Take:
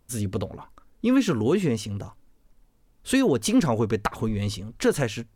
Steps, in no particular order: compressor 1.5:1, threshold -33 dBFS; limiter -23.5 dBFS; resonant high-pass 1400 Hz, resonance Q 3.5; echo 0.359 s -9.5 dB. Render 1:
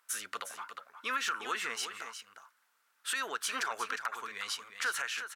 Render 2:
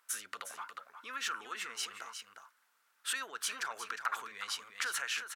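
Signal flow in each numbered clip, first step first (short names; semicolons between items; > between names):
resonant high-pass > compressor > limiter > echo; limiter > echo > compressor > resonant high-pass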